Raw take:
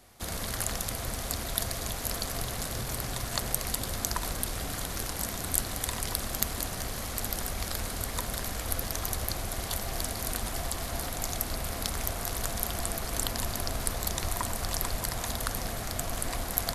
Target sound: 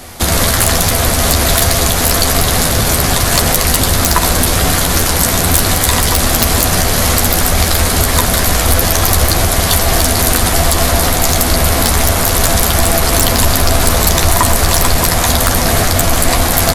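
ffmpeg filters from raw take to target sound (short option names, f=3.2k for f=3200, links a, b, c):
-filter_complex "[0:a]asplit=2[a][b];[b]adelay=12,volume=-6dB[c];[a][c]amix=inputs=2:normalize=0,aeval=exprs='0.75*sin(PI/2*6.31*val(0)/0.75)':c=same,alimiter=limit=-6dB:level=0:latency=1:release=197,volume=4.5dB"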